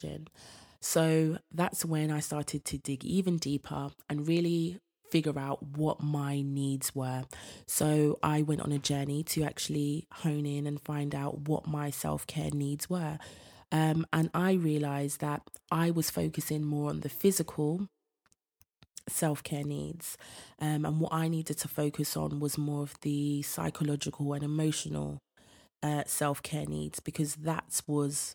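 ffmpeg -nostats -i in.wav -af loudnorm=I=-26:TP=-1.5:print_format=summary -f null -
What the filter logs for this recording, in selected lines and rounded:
Input Integrated:    -32.4 LUFS
Input True Peak:     -11.6 dBTP
Input LRA:             2.9 LU
Input Threshold:     -42.7 LUFS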